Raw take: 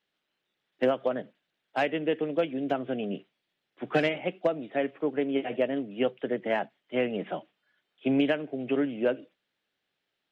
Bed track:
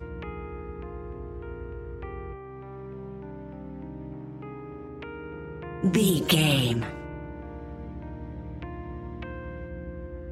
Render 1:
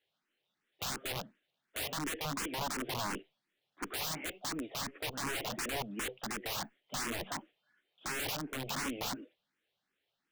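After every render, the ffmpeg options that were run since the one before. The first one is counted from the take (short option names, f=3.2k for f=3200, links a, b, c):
-filter_complex "[0:a]aeval=exprs='(mod(28.2*val(0)+1,2)-1)/28.2':c=same,asplit=2[a][b];[b]afreqshift=2.8[c];[a][c]amix=inputs=2:normalize=1"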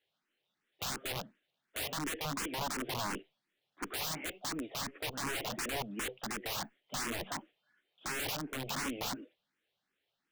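-af anull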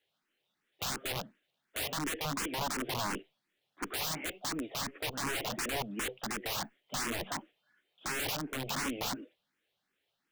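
-af "volume=2dB"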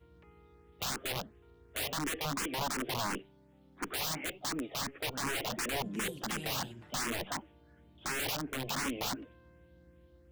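-filter_complex "[1:a]volume=-22.5dB[a];[0:a][a]amix=inputs=2:normalize=0"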